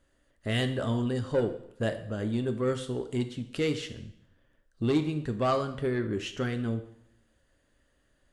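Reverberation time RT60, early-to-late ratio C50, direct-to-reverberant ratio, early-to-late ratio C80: 0.75 s, 11.5 dB, 7.5 dB, 14.0 dB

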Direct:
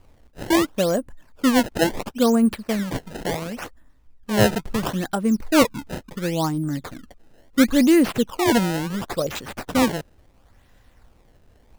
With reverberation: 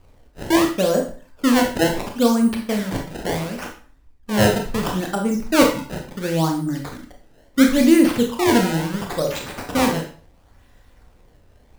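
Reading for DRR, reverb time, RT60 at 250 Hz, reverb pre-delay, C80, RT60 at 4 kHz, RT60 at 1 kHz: 2.0 dB, 0.45 s, 0.45 s, 22 ms, 12.0 dB, 0.40 s, 0.40 s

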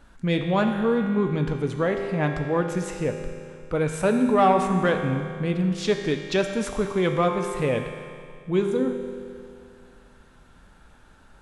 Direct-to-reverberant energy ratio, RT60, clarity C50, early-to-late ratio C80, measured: 3.5 dB, 2.3 s, 5.0 dB, 6.0 dB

